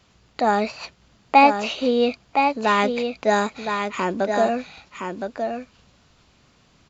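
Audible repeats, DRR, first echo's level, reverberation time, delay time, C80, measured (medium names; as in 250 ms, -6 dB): 1, no reverb, -6.0 dB, no reverb, 1016 ms, no reverb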